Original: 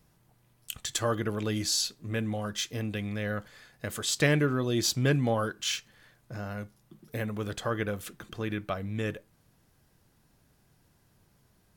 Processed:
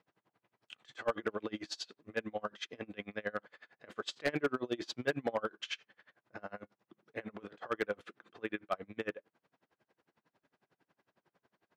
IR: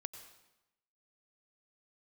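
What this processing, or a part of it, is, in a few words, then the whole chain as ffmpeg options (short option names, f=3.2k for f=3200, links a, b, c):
helicopter radio: -af "highpass=340,lowpass=2.6k,aeval=exprs='val(0)*pow(10,-30*(0.5-0.5*cos(2*PI*11*n/s))/20)':c=same,asoftclip=type=hard:threshold=-26.5dB,volume=3dB"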